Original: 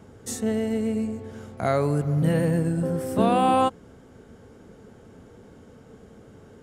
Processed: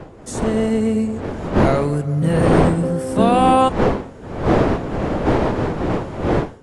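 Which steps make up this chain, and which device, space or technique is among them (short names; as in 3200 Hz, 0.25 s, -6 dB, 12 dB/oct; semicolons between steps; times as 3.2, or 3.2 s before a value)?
smartphone video outdoors (wind noise 500 Hz -27 dBFS; AGC gain up to 14.5 dB; gain -1 dB; AAC 48 kbps 24000 Hz)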